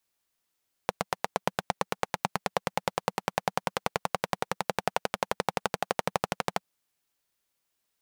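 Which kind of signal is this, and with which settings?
single-cylinder engine model, changing speed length 5.72 s, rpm 1000, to 1500, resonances 190/510/750 Hz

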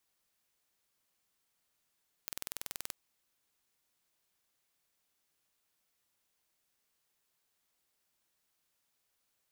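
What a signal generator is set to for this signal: pulse train 20.9 per s, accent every 0, -11.5 dBFS 0.64 s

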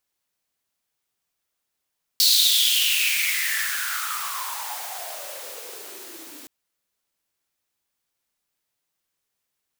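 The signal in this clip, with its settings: swept filtered noise white, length 4.27 s highpass, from 4.4 kHz, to 270 Hz, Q 7.4, exponential, gain ramp -22 dB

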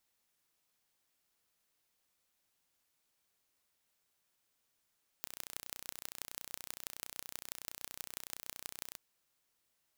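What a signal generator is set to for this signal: pulse train 30.7 per s, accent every 5, -12 dBFS 3.73 s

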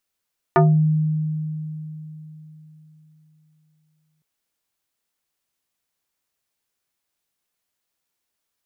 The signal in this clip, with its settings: FM tone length 3.66 s, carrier 155 Hz, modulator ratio 3.44, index 2.5, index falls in 0.31 s exponential, decay 3.80 s, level -10 dB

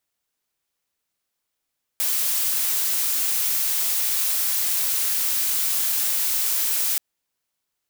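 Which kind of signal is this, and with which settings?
noise blue, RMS -22.5 dBFS 4.98 s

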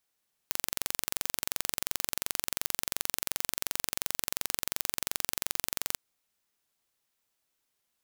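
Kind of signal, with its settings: pulse train 22.8 per s, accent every 0, -2 dBFS 5.46 s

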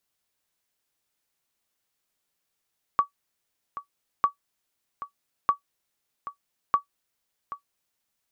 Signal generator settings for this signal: sonar ping 1.14 kHz, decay 0.11 s, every 1.25 s, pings 4, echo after 0.78 s, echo -14.5 dB -11 dBFS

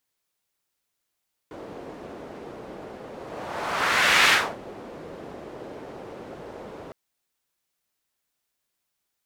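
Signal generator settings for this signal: whoosh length 5.41 s, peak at 2.79 s, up 1.26 s, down 0.30 s, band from 450 Hz, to 2.2 kHz, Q 1.3, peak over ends 22 dB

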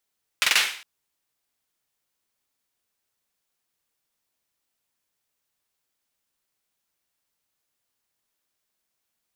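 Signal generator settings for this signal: hand clap length 0.41 s, bursts 4, apart 45 ms, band 2.4 kHz, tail 0.50 s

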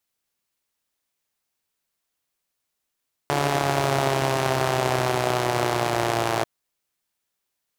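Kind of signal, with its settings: four-cylinder engine model, changing speed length 3.14 s, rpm 4300, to 3400, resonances 140/370/640 Hz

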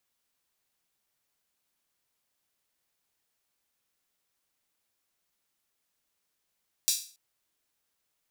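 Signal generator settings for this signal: open hi-hat length 0.28 s, high-pass 4.7 kHz, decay 0.40 s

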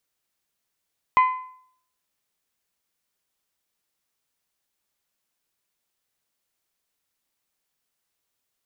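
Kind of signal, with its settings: metal hit bell, lowest mode 1.02 kHz, decay 0.61 s, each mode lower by 10.5 dB, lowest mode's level -11 dB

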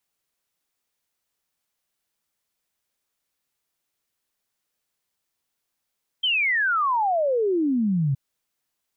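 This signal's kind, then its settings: log sweep 3.2 kHz -> 130 Hz 1.92 s -19 dBFS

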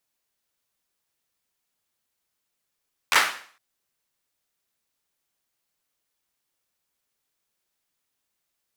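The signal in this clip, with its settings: hand clap length 0.46 s, apart 12 ms, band 1.5 kHz, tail 0.48 s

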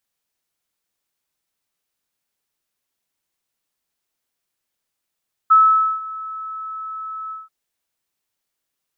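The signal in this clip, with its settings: ADSR sine 1.3 kHz, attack 16 ms, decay 482 ms, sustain -20 dB, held 1.81 s, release 176 ms -7 dBFS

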